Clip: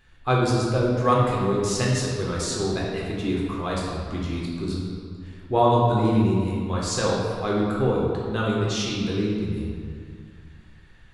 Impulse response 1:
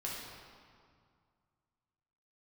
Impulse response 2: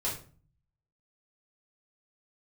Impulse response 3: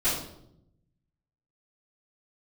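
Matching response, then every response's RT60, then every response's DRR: 1; 2.1 s, 0.40 s, 0.75 s; -5.0 dB, -7.5 dB, -16.5 dB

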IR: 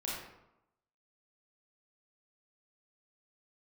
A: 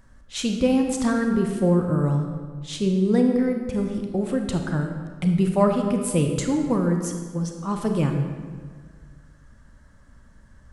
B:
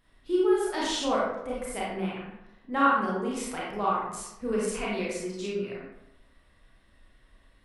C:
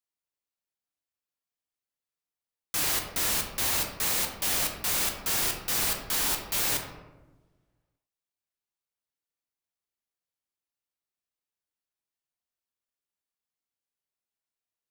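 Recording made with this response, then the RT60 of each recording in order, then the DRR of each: B; 1.7 s, 0.90 s, 1.2 s; 3.5 dB, -6.0 dB, 1.5 dB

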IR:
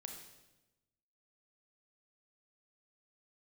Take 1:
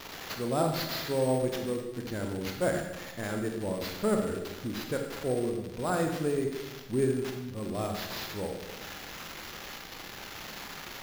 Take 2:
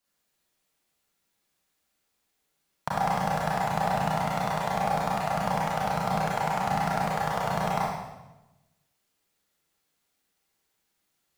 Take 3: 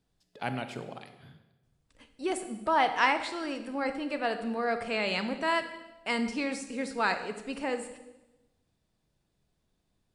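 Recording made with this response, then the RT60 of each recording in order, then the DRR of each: 1; 1.0 s, 1.0 s, 1.0 s; 3.0 dB, -6.0 dB, 8.5 dB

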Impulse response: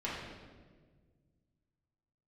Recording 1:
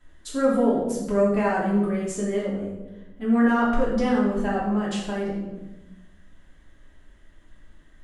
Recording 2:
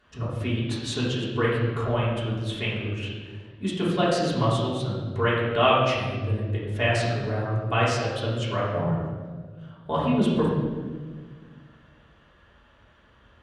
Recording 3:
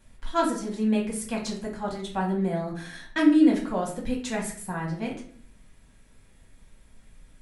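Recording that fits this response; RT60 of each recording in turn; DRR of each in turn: 2; 1.1 s, 1.6 s, 0.55 s; -8.0 dB, -8.5 dB, -2.5 dB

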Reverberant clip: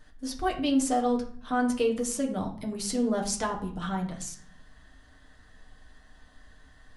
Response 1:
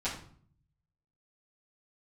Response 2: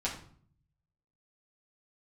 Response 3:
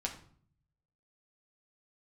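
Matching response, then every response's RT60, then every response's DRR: 3; 0.55 s, 0.55 s, 0.55 s; -11.0 dB, -6.0 dB, 0.0 dB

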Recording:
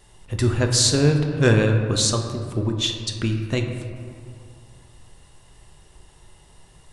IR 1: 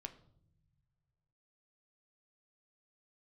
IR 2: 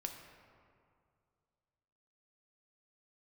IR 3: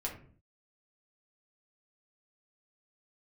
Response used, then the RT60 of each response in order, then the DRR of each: 2; no single decay rate, 2.3 s, 0.45 s; 6.5 dB, 3.5 dB, -2.5 dB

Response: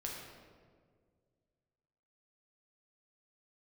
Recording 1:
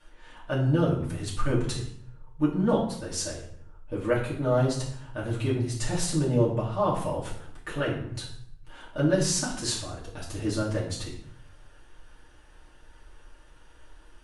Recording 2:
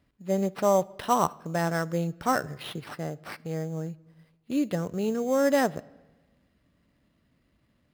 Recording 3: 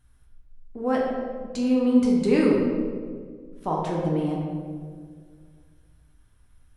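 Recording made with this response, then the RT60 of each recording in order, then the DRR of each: 3; 0.65 s, 1.2 s, 1.9 s; -7.0 dB, 17.5 dB, -2.5 dB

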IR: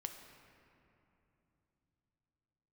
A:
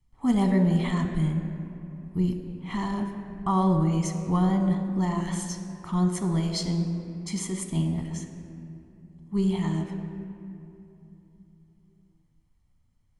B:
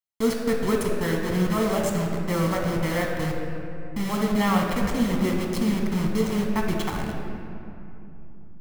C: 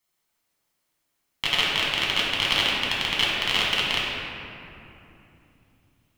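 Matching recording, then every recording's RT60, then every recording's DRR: A; 3.0 s, 3.0 s, 3.0 s; 4.5 dB, 0.0 dB, -6.0 dB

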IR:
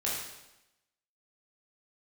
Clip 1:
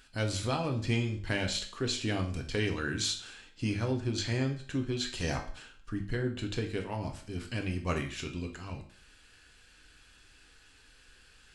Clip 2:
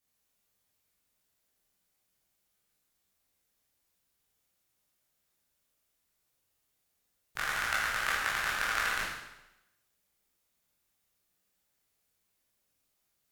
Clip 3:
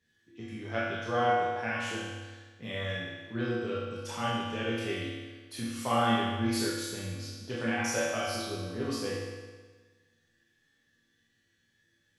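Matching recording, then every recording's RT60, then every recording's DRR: 2; 0.50 s, 0.95 s, 1.4 s; 2.5 dB, -6.5 dB, -8.0 dB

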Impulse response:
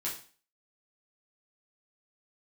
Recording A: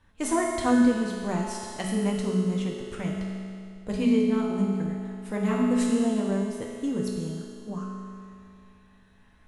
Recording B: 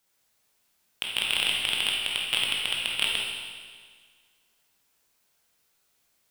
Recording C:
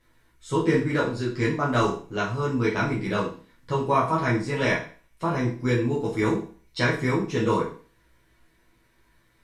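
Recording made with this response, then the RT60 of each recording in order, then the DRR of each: C; 2.4 s, 1.7 s, 0.40 s; -4.0 dB, -3.0 dB, -7.0 dB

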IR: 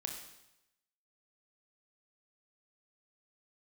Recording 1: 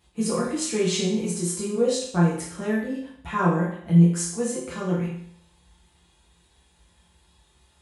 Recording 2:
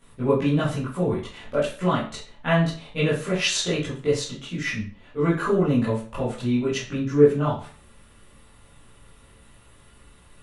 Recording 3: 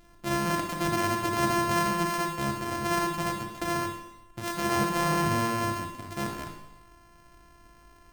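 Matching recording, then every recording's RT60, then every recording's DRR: 3; 0.65 s, 0.40 s, 0.90 s; -6.5 dB, -11.0 dB, 2.0 dB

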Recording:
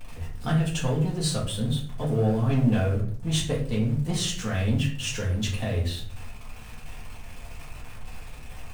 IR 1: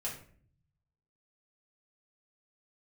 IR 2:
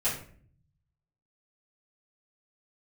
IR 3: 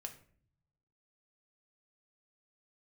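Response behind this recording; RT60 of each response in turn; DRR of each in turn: 1; 0.50 s, 0.50 s, 0.55 s; -6.0 dB, -13.0 dB, 4.0 dB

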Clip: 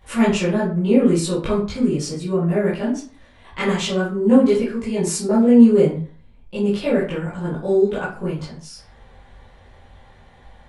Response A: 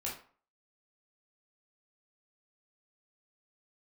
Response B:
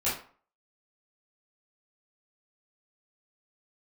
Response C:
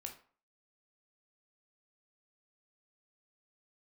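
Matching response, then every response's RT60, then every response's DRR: B; 0.45 s, 0.45 s, 0.45 s; -5.0 dB, -11.0 dB, 2.5 dB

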